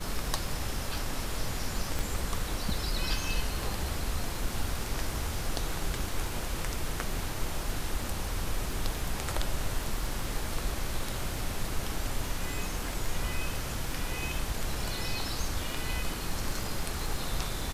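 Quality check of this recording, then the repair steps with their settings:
surface crackle 26 per second −36 dBFS
0:01.99: click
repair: click removal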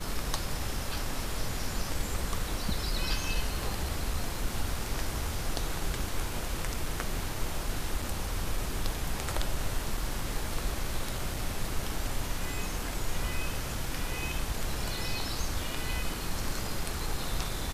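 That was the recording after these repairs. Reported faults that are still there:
0:01.99: click

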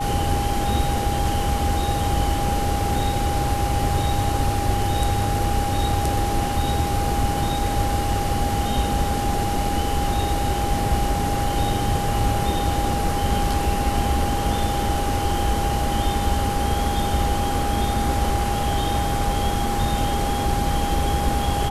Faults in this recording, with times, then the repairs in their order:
whistle 810 Hz −25 dBFS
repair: notch filter 810 Hz, Q 30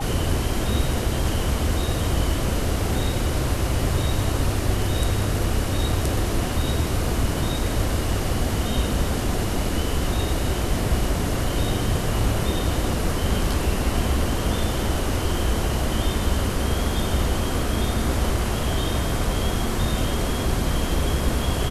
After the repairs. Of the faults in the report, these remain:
none of them is left

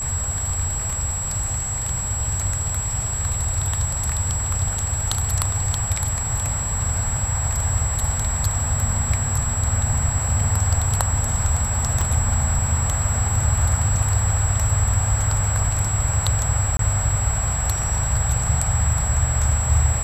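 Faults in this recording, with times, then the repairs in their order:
whistle 7,700 Hz −25 dBFS
0:12.01: click
0:16.77–0:16.79: drop-out 23 ms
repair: click removal
notch filter 7,700 Hz, Q 30
repair the gap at 0:16.77, 23 ms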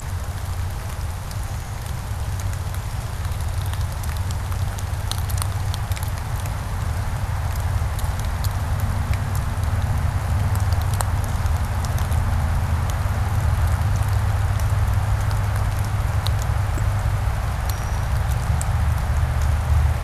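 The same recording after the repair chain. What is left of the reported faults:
0:12.01: click

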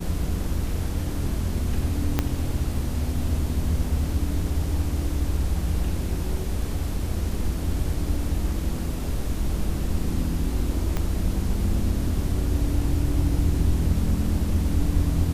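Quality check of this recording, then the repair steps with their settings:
0:02.19: click −7 dBFS
0:10.97: click −13 dBFS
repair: click removal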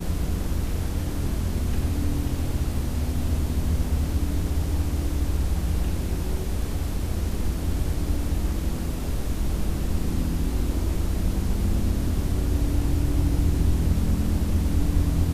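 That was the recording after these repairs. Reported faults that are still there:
0:02.19: click
0:10.97: click

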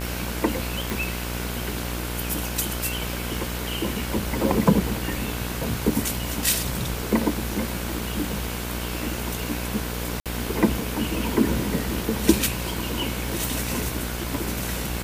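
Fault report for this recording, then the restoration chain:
mains buzz 60 Hz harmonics 30 −31 dBFS
0:00.90: click
0:10.20–0:10.26: drop-out 57 ms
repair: click removal
hum removal 60 Hz, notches 30
repair the gap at 0:10.20, 57 ms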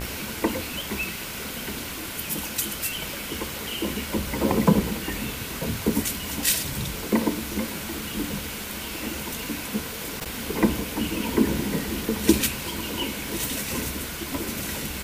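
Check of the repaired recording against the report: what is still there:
none of them is left

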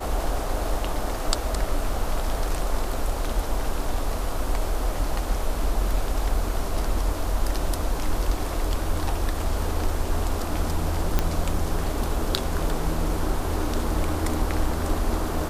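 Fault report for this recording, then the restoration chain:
0:11.19: click −7 dBFS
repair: click removal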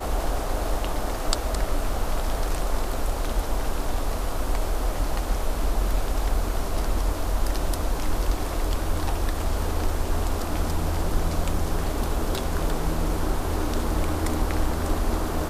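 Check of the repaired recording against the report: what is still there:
none of them is left

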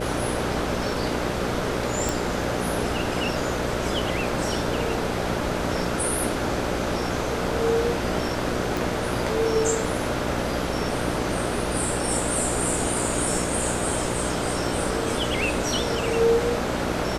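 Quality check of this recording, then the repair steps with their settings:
mains buzz 60 Hz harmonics 10 −30 dBFS
0:02.09: click
0:08.77: click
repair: click removal
hum removal 60 Hz, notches 10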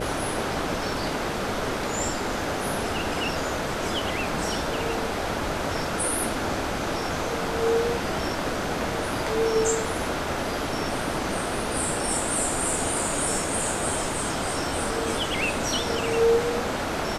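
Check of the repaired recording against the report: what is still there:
0:08.77: click

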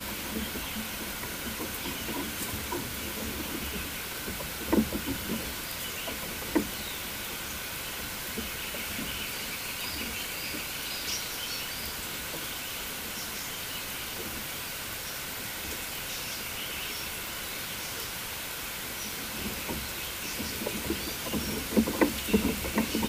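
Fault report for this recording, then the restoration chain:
0:17.27: click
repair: click removal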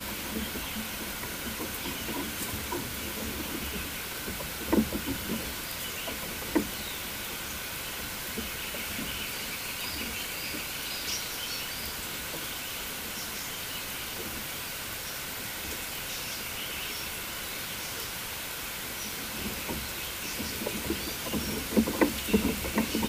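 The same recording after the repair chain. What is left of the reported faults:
none of them is left

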